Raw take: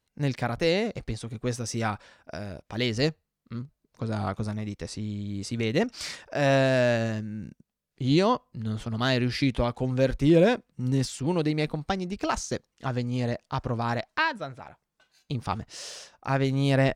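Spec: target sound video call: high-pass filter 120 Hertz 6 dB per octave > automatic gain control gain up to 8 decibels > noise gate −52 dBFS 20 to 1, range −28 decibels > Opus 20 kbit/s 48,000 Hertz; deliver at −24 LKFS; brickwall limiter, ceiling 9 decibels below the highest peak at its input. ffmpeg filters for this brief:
ffmpeg -i in.wav -af "alimiter=limit=-17.5dB:level=0:latency=1,highpass=frequency=120:poles=1,dynaudnorm=maxgain=8dB,agate=range=-28dB:threshold=-52dB:ratio=20,volume=5.5dB" -ar 48000 -c:a libopus -b:a 20k out.opus

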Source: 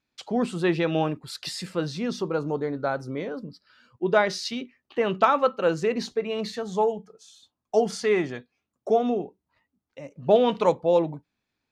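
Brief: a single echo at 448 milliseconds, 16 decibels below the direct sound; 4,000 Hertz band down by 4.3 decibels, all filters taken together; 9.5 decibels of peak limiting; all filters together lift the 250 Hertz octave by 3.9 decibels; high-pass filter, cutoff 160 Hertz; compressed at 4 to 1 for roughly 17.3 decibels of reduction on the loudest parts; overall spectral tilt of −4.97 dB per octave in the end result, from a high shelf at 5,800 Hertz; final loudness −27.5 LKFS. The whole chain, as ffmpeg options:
ffmpeg -i in.wav -af "highpass=160,equalizer=frequency=250:width_type=o:gain=6,equalizer=frequency=4000:width_type=o:gain=-8,highshelf=frequency=5800:gain=6,acompressor=threshold=-35dB:ratio=4,alimiter=level_in=5dB:limit=-24dB:level=0:latency=1,volume=-5dB,aecho=1:1:448:0.158,volume=12dB" out.wav

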